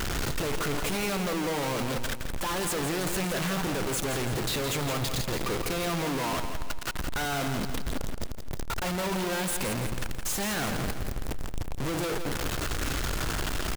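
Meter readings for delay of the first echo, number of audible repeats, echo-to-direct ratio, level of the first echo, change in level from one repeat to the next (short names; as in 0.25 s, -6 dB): 0.168 s, 5, -7.0 dB, -8.0 dB, -6.5 dB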